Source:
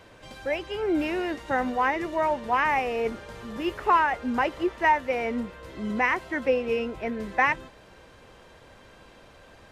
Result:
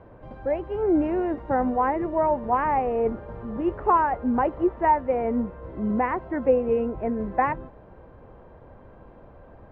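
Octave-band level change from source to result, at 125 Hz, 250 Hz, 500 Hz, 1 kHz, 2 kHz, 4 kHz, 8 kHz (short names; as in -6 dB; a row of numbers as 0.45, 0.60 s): +6.5 dB, +4.5 dB, +3.5 dB, +1.5 dB, -9.0 dB, under -15 dB, n/a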